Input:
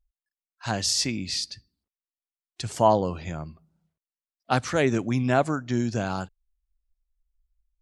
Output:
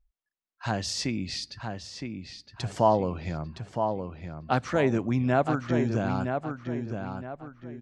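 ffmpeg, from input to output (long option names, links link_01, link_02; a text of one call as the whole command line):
ffmpeg -i in.wav -filter_complex "[0:a]aemphasis=mode=reproduction:type=75kf,asplit=2[link_01][link_02];[link_02]acompressor=threshold=-35dB:ratio=6,volume=1dB[link_03];[link_01][link_03]amix=inputs=2:normalize=0,asplit=2[link_04][link_05];[link_05]adelay=965,lowpass=frequency=3500:poles=1,volume=-6dB,asplit=2[link_06][link_07];[link_07]adelay=965,lowpass=frequency=3500:poles=1,volume=0.36,asplit=2[link_08][link_09];[link_09]adelay=965,lowpass=frequency=3500:poles=1,volume=0.36,asplit=2[link_10][link_11];[link_11]adelay=965,lowpass=frequency=3500:poles=1,volume=0.36[link_12];[link_04][link_06][link_08][link_10][link_12]amix=inputs=5:normalize=0,volume=-3dB" out.wav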